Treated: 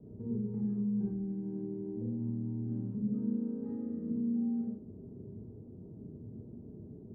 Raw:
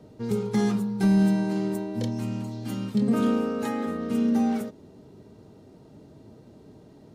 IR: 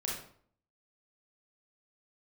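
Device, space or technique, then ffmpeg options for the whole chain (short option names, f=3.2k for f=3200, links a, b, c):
television next door: -filter_complex "[0:a]acompressor=threshold=-37dB:ratio=5,lowpass=300[a];[1:a]atrim=start_sample=2205[b];[a][b]afir=irnorm=-1:irlink=0"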